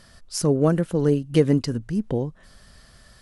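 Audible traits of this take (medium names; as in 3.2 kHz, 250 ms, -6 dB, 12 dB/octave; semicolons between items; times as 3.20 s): noise floor -53 dBFS; spectral tilt -7.5 dB/octave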